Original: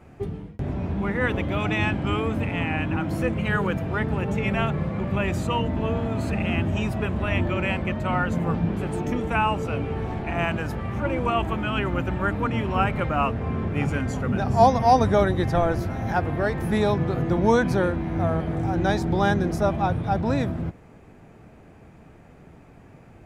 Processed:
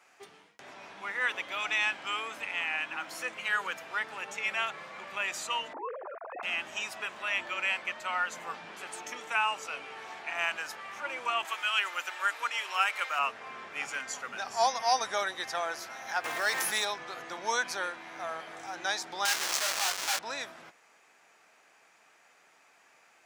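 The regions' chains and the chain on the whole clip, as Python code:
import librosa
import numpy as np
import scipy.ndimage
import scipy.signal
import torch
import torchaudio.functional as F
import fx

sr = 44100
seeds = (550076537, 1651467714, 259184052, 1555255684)

y = fx.chain(x, sr, fx.sine_speech(),
    fx.lowpass(hz=1200.0, slope=24), at=(5.73, 6.43))
y = fx.chain(y, sr, fx.highpass(hz=310.0, slope=24),
    fx.tilt_eq(slope=2.5), at=(11.45, 13.19))
y = fx.chain(y, sr, fx.high_shelf(hz=4400.0, db=9.0),
    fx.quant_float(bits=4),
    fx.env_flatten(amount_pct=100), at=(16.24, 16.85))
y = fx.chain(y, sr, fx.peak_eq(hz=250.0, db=-7.5, octaves=1.3),
    fx.schmitt(flips_db=-41.0),
    fx.doubler(ms=21.0, db=-6.5), at=(19.25, 20.19))
y = scipy.signal.sosfilt(scipy.signal.butter(2, 1200.0, 'highpass', fs=sr, output='sos'), y)
y = fx.peak_eq(y, sr, hz=6000.0, db=8.0, octaves=1.2)
y = y * 10.0 ** (-1.5 / 20.0)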